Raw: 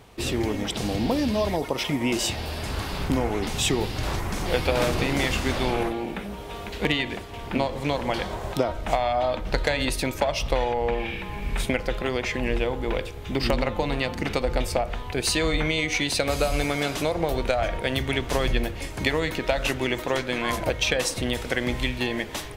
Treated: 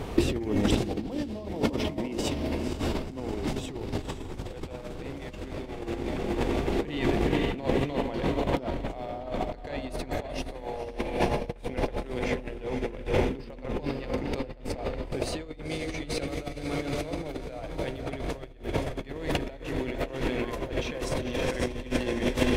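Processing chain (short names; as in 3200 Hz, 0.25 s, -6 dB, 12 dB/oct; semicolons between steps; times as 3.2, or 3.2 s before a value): tilt -1.5 dB/oct; notches 60/120/180/240/300/360 Hz; diffused feedback echo 0.504 s, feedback 70%, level -5 dB; negative-ratio compressor -30 dBFS, ratio -0.5; bell 330 Hz +5 dB 1.4 oct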